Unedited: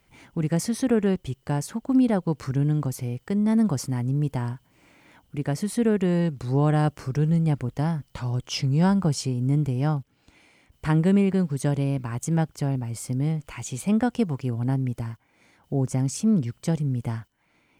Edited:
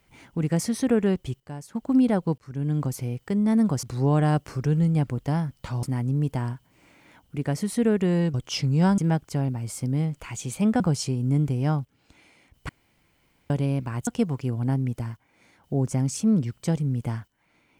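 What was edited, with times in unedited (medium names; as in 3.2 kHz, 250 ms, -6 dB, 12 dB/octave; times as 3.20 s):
1.40–1.75 s: gain -11 dB
2.38–2.81 s: fade in
6.34–8.34 s: move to 3.83 s
10.87–11.68 s: room tone
12.25–14.07 s: move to 8.98 s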